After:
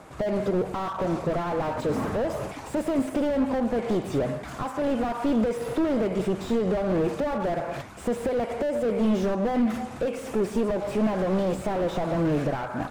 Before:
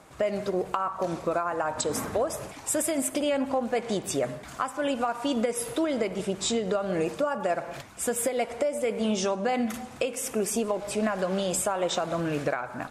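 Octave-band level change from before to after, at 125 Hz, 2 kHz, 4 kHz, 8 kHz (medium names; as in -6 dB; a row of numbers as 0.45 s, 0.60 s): +6.5 dB, -2.0 dB, -6.5 dB, -15.0 dB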